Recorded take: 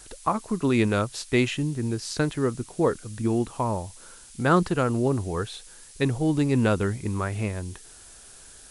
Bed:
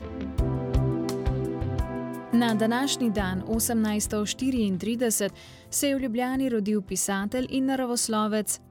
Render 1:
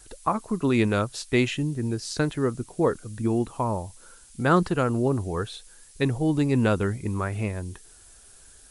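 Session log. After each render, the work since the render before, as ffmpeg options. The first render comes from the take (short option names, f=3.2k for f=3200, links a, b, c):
-af "afftdn=nr=6:nf=-48"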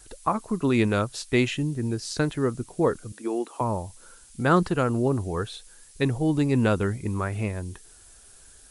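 -filter_complex "[0:a]asettb=1/sr,asplit=3[a][b][c];[a]atrim=end=3.124[d];[b]atrim=start=3.12:end=3.61,asetpts=PTS-STARTPTS,afade=t=in:d=0.004:c=qsin,afade=t=out:st=0.486:d=0.004:c=qsin,highpass=f=310:w=0.5412,highpass=f=310:w=1.3066[e];[c]atrim=start=3.606[f];[d][e]acrossfade=d=0.004:c1=hsin:c2=qsin[g];[g][f]acrossfade=d=0.004:c1=qsin:c2=hsin"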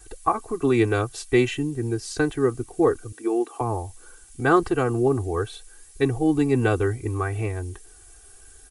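-af "equalizer=f=4.3k:t=o:w=1.2:g=-5.5,aecho=1:1:2.6:0.93"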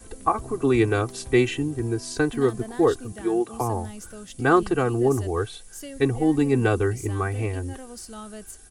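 -filter_complex "[1:a]volume=-14dB[a];[0:a][a]amix=inputs=2:normalize=0"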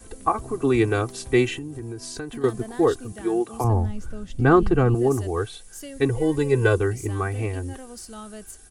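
-filter_complex "[0:a]asettb=1/sr,asplit=3[a][b][c];[a]atrim=end=1.584[d];[b]atrim=start=1.58:end=2.44,asetpts=PTS-STARTPTS,afade=t=in:d=0.004:c=qsin,afade=t=out:st=0.856:d=0.004:c=qsin,acompressor=threshold=-31dB:ratio=4:attack=3.2:release=140:knee=1:detection=peak[e];[c]atrim=start=2.436[f];[d][e]acrossfade=d=0.004:c1=hsin:c2=qsin[g];[g][f]acrossfade=d=0.004:c1=qsin:c2=hsin,asettb=1/sr,asplit=3[h][i][j];[h]atrim=end=3.644[k];[i]atrim=start=3.64:end=4.95,asetpts=PTS-STARTPTS,afade=t=in:d=0.004:c=qsin,afade=t=out:st=1.306:d=0.004:c=qsin,aemphasis=mode=reproduction:type=bsi[l];[j]atrim=start=4.946[m];[k][l]acrossfade=d=0.004:c1=hsin:c2=qsin[n];[n][m]acrossfade=d=0.004:c1=qsin:c2=hsin,asettb=1/sr,asplit=3[o][p][q];[o]atrim=end=6.094[r];[p]atrim=start=6.09:end=6.78,asetpts=PTS-STARTPTS,afade=t=in:d=0.004:c=qsin,afade=t=out:st=0.686:d=0.004:c=qsin,aecho=1:1:2:0.69,atrim=end_sample=30429[s];[q]atrim=start=6.776[t];[r][s]acrossfade=d=0.004:c1=hsin:c2=qsin[u];[u][t]acrossfade=d=0.004:c1=qsin:c2=hsin"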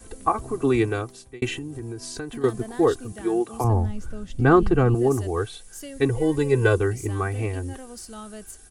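-filter_complex "[0:a]asplit=2[a][b];[a]atrim=end=1.42,asetpts=PTS-STARTPTS,afade=t=out:st=0.69:d=0.73[c];[b]atrim=start=1.42,asetpts=PTS-STARTPTS,afade=t=in:d=0.004:c=hsin[d];[c][d]concat=n=2:v=0:a=1"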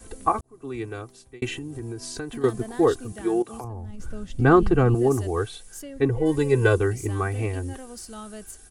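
-filter_complex "[0:a]asettb=1/sr,asplit=3[a][b][c];[a]atrim=end=3.424[d];[b]atrim=start=3.42:end=4,asetpts=PTS-STARTPTS,afade=t=in:d=0.004:c=qsin,afade=t=out:st=0.576:d=0.004:c=qsin,acompressor=threshold=-32dB:ratio=8:attack=3.2:release=140:knee=1:detection=peak[e];[c]atrim=start=3.996[f];[d][e]acrossfade=d=0.004:c1=hsin:c2=qsin[g];[g][f]acrossfade=d=0.004:c1=qsin:c2=hsin,asplit=3[h][i][j];[h]afade=t=out:st=5.81:d=0.02[k];[i]lowpass=f=1.7k:p=1,afade=t=in:st=5.81:d=0.02,afade=t=out:st=6.25:d=0.02[l];[j]afade=t=in:st=6.25:d=0.02[m];[k][l][m]amix=inputs=3:normalize=0,asplit=2[n][o];[n]atrim=end=0.41,asetpts=PTS-STARTPTS,afade=t=out:st=0.406:d=0.004:c=hsin[p];[o]atrim=start=0.41,asetpts=PTS-STARTPTS,afade=t=in:d=1.4[q];[p][q]concat=n=2:v=0:a=1"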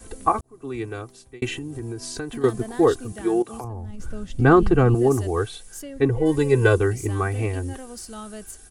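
-af "volume=2dB,alimiter=limit=-3dB:level=0:latency=1"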